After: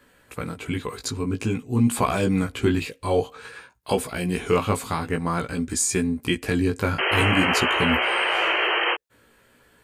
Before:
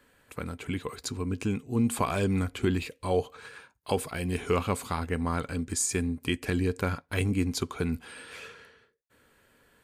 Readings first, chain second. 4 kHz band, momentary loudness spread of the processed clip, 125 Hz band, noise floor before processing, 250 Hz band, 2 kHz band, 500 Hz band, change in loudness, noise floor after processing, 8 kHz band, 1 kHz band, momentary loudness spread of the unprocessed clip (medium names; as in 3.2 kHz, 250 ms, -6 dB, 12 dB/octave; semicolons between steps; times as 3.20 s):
+13.5 dB, 11 LU, +4.5 dB, -68 dBFS, +5.5 dB, +13.5 dB, +6.5 dB, +7.0 dB, -59 dBFS, +5.5 dB, +9.5 dB, 15 LU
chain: painted sound noise, 6.98–8.95 s, 320–3200 Hz -28 dBFS; chorus 0.51 Hz, delay 16 ms, depth 2.7 ms; trim +8.5 dB